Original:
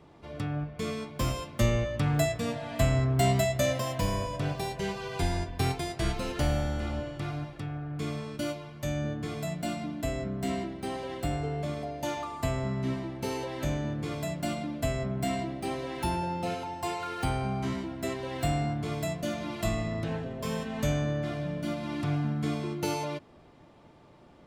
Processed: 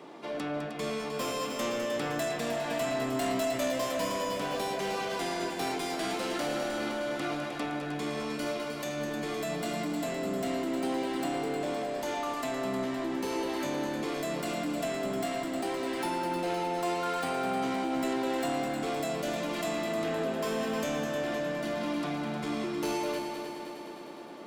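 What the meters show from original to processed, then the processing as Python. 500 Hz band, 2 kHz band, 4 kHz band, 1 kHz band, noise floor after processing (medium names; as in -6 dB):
+2.0 dB, +2.0 dB, +1.5 dB, +2.0 dB, -39 dBFS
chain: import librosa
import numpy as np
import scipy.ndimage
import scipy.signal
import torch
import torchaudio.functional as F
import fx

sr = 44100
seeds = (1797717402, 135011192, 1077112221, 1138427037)

p1 = scipy.signal.sosfilt(scipy.signal.butter(4, 230.0, 'highpass', fs=sr, output='sos'), x)
p2 = fx.over_compress(p1, sr, threshold_db=-41.0, ratio=-1.0)
p3 = p1 + F.gain(torch.from_numpy(p2), 0.0).numpy()
p4 = 10.0 ** (-28.5 / 20.0) * np.tanh(p3 / 10.0 ** (-28.5 / 20.0))
y = fx.echo_heads(p4, sr, ms=103, heads='second and third', feedback_pct=65, wet_db=-8)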